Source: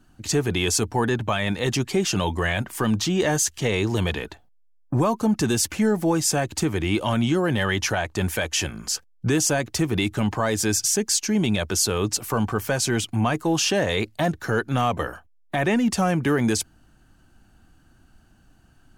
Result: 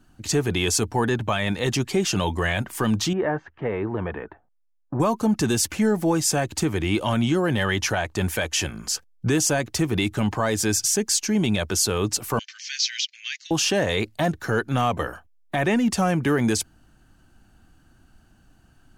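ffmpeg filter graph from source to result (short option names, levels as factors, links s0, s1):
-filter_complex "[0:a]asettb=1/sr,asplit=3[s0][s1][s2];[s0]atrim=end=3.134[s3];[s1]atrim=start=3.13:end=5,asetpts=PTS-STARTPTS,afade=t=in:d=0.004:c=qsin,afade=t=out:st=1.866:d=0.004:c=qsin,lowpass=f=1700:w=0.5412,lowpass=f=1700:w=1.3066,lowshelf=f=200:g=-9[s4];[s2]atrim=start=4.996[s5];[s3][s4]acrossfade=d=0.004:c1=hsin:c2=qsin[s6];[s6][s5]acrossfade=d=0.004:c1=qsin:c2=hsin,asettb=1/sr,asplit=3[s7][s8][s9];[s7]atrim=end=12.394[s10];[s8]atrim=start=12.39:end=13.51,asetpts=PTS-STARTPTS,afade=t=in:d=0.004:c=qsin,afade=t=out:st=1.116:d=0.004:c=qsin,asuperpass=centerf=3500:order=12:qfactor=0.76,acrossover=split=4800[s11][s12];[s12]acompressor=threshold=0.0112:ratio=4:attack=1:release=60[s13];[s11][s13]amix=inputs=2:normalize=0,equalizer=f=5100:t=o:w=1.6:g=10[s14];[s9]atrim=start=13.506[s15];[s10][s14]acrossfade=d=0.004:c1=hsin:c2=qsin[s16];[s16][s15]acrossfade=d=0.004:c1=qsin:c2=hsin"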